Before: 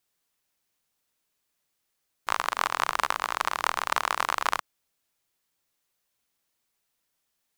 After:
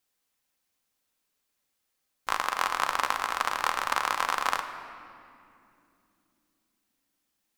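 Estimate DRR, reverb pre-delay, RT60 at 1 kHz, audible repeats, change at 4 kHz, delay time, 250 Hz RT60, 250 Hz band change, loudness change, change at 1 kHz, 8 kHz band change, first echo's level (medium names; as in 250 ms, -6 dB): 5.5 dB, 4 ms, 2.3 s, no echo, -0.5 dB, no echo, 5.0 s, 0.0 dB, -0.5 dB, -0.5 dB, -1.0 dB, no echo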